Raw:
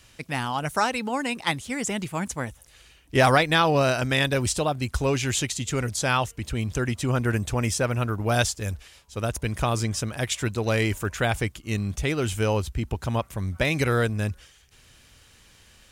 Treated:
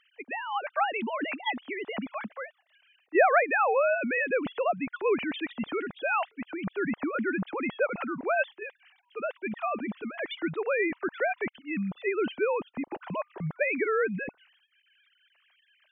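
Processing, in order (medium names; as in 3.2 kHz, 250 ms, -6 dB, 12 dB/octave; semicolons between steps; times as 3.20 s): formants replaced by sine waves; trim -4.5 dB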